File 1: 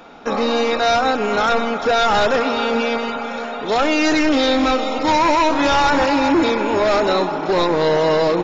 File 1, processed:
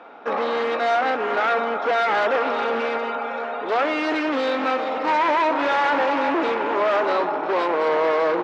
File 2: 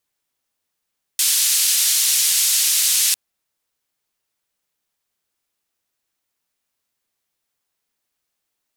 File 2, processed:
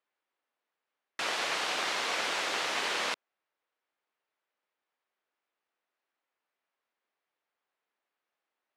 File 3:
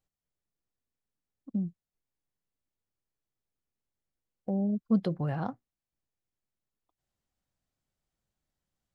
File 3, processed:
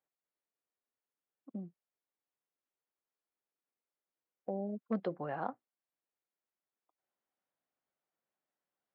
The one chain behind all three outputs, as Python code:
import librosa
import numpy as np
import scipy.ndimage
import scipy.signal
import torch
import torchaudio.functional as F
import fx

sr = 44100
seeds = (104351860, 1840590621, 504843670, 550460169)

y = np.minimum(x, 2.0 * 10.0 ** (-17.0 / 20.0) - x)
y = fx.bandpass_edges(y, sr, low_hz=390.0, high_hz=2100.0)